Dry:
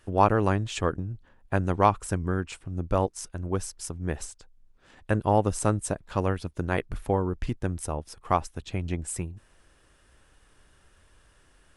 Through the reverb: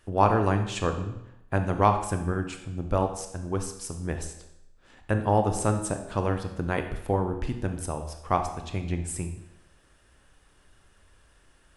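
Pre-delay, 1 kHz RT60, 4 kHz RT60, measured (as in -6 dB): 25 ms, 0.85 s, 0.80 s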